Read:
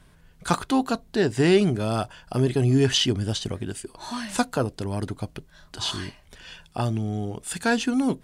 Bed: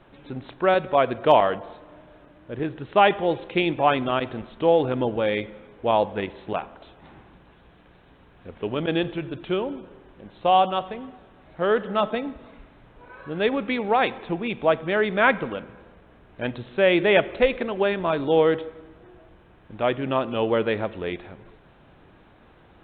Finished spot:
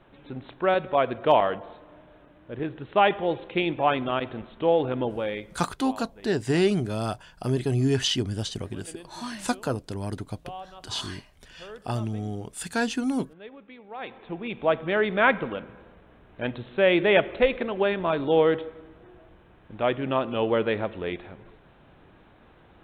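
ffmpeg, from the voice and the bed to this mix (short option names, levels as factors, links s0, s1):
-filter_complex "[0:a]adelay=5100,volume=0.668[s0];[1:a]volume=7.08,afade=t=out:st=5.01:d=0.73:silence=0.11885,afade=t=in:st=13.91:d=0.92:silence=0.1[s1];[s0][s1]amix=inputs=2:normalize=0"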